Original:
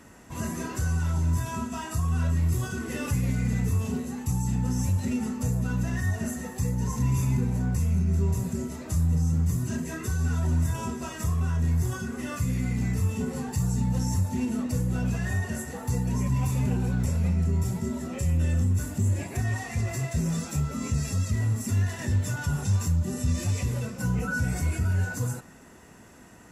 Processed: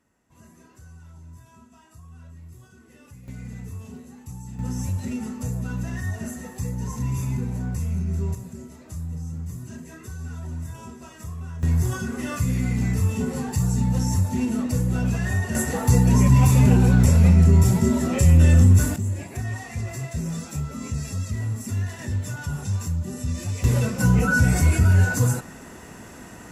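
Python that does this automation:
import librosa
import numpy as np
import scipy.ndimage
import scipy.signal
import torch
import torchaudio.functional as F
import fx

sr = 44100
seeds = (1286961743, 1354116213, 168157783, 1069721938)

y = fx.gain(x, sr, db=fx.steps((0.0, -19.5), (3.28, -10.5), (4.59, -1.5), (8.35, -8.0), (11.63, 4.0), (15.55, 10.5), (18.96, -1.5), (23.64, 9.0)))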